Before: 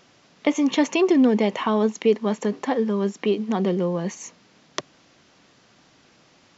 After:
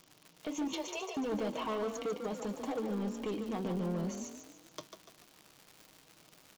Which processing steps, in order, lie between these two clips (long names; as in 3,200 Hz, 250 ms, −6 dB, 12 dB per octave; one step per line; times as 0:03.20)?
parametric band 1,800 Hz −14 dB 0.43 octaves
comb filter 6.4 ms, depth 52%
brickwall limiter −14.5 dBFS, peak gain reduction 9 dB
flanger 0.5 Hz, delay 5.9 ms, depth 5.1 ms, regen −68%
surface crackle 180 per second −36 dBFS
0:00.73–0:01.17: linear-phase brick-wall high-pass 390 Hz
hard clipping −26 dBFS, distortion −11 dB
echo with shifted repeats 145 ms, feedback 45%, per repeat +32 Hz, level −7.5 dB
level −6 dB